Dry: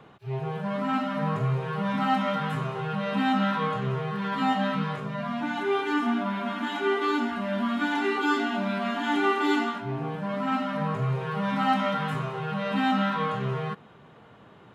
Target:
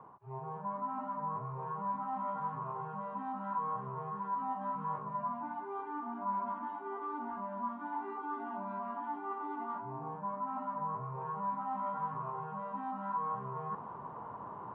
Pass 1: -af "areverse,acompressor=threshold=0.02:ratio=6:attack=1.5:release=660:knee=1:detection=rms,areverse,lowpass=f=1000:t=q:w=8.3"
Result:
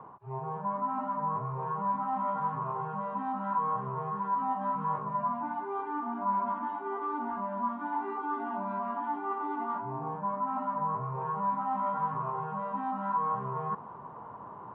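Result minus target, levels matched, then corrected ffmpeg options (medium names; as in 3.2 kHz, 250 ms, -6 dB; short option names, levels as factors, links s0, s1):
compression: peak gain reduction -6 dB
-af "areverse,acompressor=threshold=0.00891:ratio=6:attack=1.5:release=660:knee=1:detection=rms,areverse,lowpass=f=1000:t=q:w=8.3"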